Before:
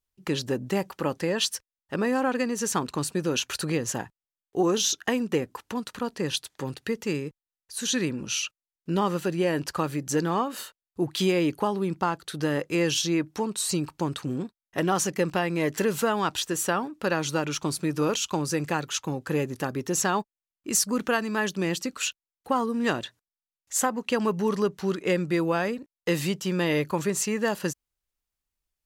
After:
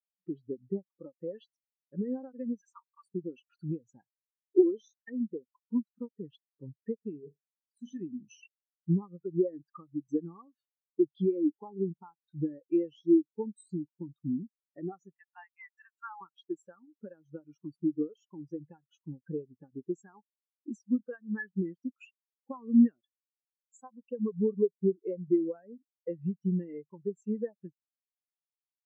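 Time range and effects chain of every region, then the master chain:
2.61–3.06 s: block-companded coder 3-bit + rippled Chebyshev high-pass 890 Hz, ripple 3 dB
7.19–8.01 s: compression 2:1, threshold -29 dBFS + flutter echo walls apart 7.1 m, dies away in 0.39 s
15.14–16.21 s: steep high-pass 730 Hz 96 dB/octave + treble shelf 4.3 kHz -3.5 dB + small samples zeroed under -37.5 dBFS
whole clip: dynamic bell 1.8 kHz, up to +4 dB, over -38 dBFS, Q 0.78; compression 16:1, threshold -29 dBFS; spectral contrast expander 4:1; trim +3.5 dB

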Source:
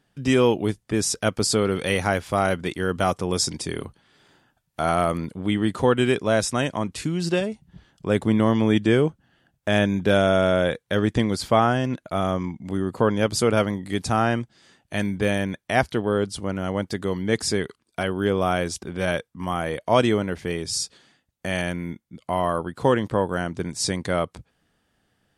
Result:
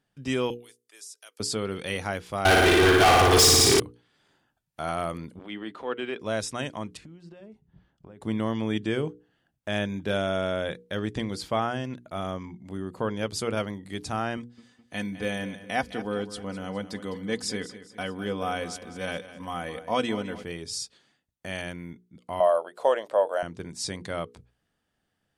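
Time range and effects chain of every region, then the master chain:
0.50–1.40 s: high-pass 330 Hz 24 dB/octave + differentiator + compression 4:1, threshold -34 dBFS
2.45–3.80 s: comb 2.6 ms, depth 69% + flutter echo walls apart 9.7 m, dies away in 1.2 s + waveshaping leveller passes 5
5.39–6.20 s: three-band isolator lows -20 dB, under 230 Hz, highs -19 dB, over 3.9 kHz + transient shaper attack -8 dB, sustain -3 dB + tape noise reduction on one side only encoder only
6.97–8.21 s: compression 16:1, threshold -33 dBFS + low-pass 1.5 kHz 6 dB/octave
14.37–20.44 s: high-pass 52 Hz + comb 4 ms, depth 52% + feedback delay 207 ms, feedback 46%, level -14 dB
22.40–23.43 s: resonant high-pass 610 Hz, resonance Q 6.6 + treble shelf 8.7 kHz +5 dB
whole clip: hum notches 60/120/180/240/300/360/420/480 Hz; dynamic bell 3.5 kHz, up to +3 dB, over -40 dBFS, Q 0.83; trim -8.5 dB

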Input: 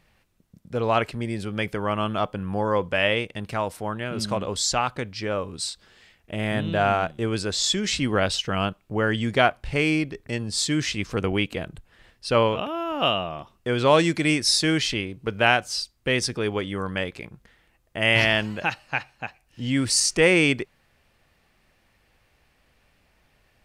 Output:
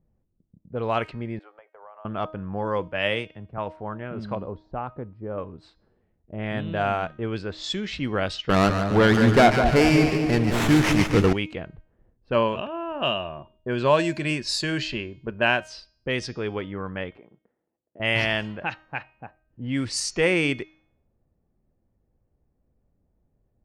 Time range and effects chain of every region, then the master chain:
1.39–2.05 s: gate -35 dBFS, range -13 dB + inverse Chebyshev high-pass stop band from 190 Hz, stop band 60 dB + compression 10:1, threshold -31 dBFS
2.88–3.58 s: treble shelf 6 kHz +5 dB + three bands expanded up and down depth 70%
4.35–5.38 s: low-pass 4.4 kHz 24 dB/octave + peaking EQ 2.7 kHz -14.5 dB 2 oct
8.49–11.33 s: waveshaping leveller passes 3 + two-band feedback delay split 910 Hz, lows 204 ms, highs 145 ms, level -6 dB + sliding maximum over 9 samples
12.32–15.61 s: rippled EQ curve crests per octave 1.4, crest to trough 7 dB + tape noise reduction on one side only decoder only
17.17–18.00 s: waveshaping leveller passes 1 + compression 3:1, threshold -37 dBFS + band-pass 310–5900 Hz
whole clip: level-controlled noise filter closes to 390 Hz, open at -17 dBFS; treble shelf 6.1 kHz -7 dB; de-hum 313.2 Hz, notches 23; trim -3 dB

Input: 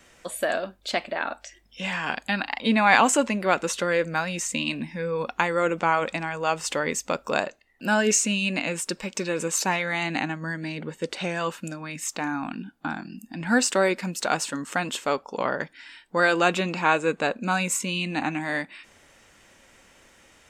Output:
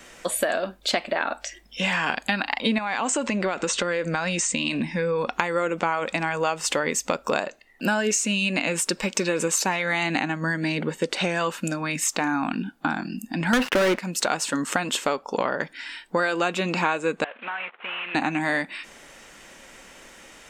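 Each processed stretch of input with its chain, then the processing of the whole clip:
2.78–5.33 s: compression, threshold -27 dBFS + brick-wall FIR low-pass 8.9 kHz
13.53–13.99 s: low-pass 2.5 kHz 24 dB/octave + waveshaping leveller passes 5
17.24–18.15 s: CVSD coder 16 kbps + high-pass 920 Hz + compression, threshold -36 dBFS
whole clip: peaking EQ 86 Hz -14 dB 0.73 oct; compression 6:1, threshold -29 dBFS; trim +8.5 dB

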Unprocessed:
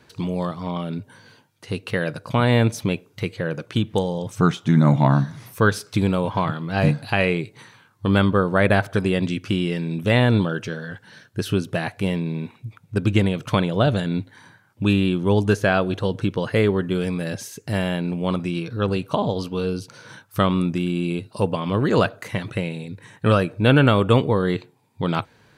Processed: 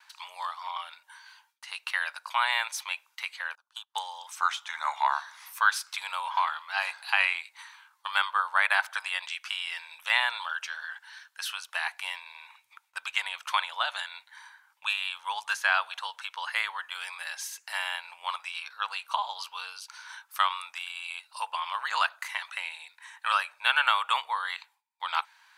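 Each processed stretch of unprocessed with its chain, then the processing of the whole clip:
3.55–3.95 s: static phaser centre 910 Hz, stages 4 + upward expansion 2.5:1, over -35 dBFS
whole clip: elliptic high-pass 890 Hz, stop band 60 dB; gate with hold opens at -57 dBFS

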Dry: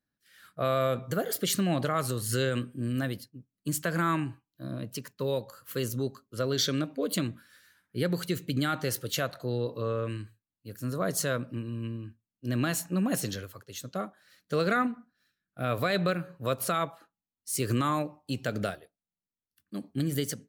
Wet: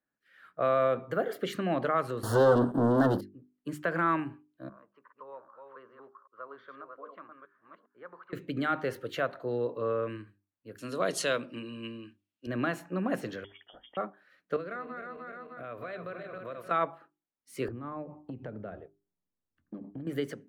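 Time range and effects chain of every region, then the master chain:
2.23–3.21 s: waveshaping leveller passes 5 + Butterworth band-stop 2.3 kHz, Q 1
4.69–8.33 s: chunks repeated in reverse 396 ms, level -5 dB + band-pass filter 1.1 kHz, Q 4.7 + distance through air 210 m
10.78–12.47 s: high-pass 150 Hz + high-order bell 5.2 kHz +15.5 dB 2.4 oct
13.44–13.97 s: band-stop 1.3 kHz, Q 7.1 + compression, threshold -43 dBFS + frequency inversion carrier 3.4 kHz
14.56–16.71 s: backward echo that repeats 152 ms, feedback 65%, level -8 dB + compression 3:1, threshold -40 dBFS + Butterworth band-stop 830 Hz, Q 6.3
17.68–20.07 s: tilt EQ -4.5 dB/octave + compression 10:1, threshold -32 dBFS
whole clip: three-band isolator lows -12 dB, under 250 Hz, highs -23 dB, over 2.5 kHz; hum notches 50/100/150/200/250/300/350/400 Hz; trim +2 dB

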